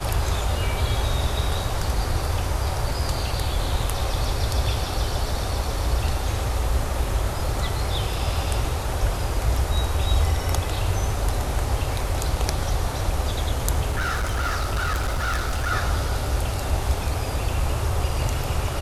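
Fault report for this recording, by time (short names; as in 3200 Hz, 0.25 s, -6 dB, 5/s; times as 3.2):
13.9–15.72 clipped -20 dBFS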